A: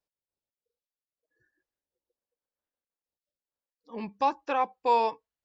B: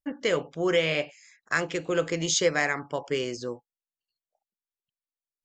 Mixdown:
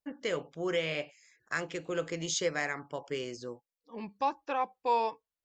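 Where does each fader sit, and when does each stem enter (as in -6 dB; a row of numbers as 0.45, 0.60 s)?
-4.5, -7.5 dB; 0.00, 0.00 s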